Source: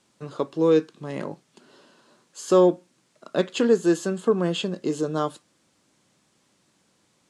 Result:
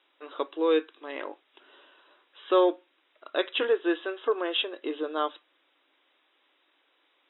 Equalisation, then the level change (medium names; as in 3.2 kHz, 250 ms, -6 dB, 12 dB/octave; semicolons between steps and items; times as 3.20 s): brick-wall FIR band-pass 260–3900 Hz; distance through air 160 m; tilt EQ +4 dB/octave; 0.0 dB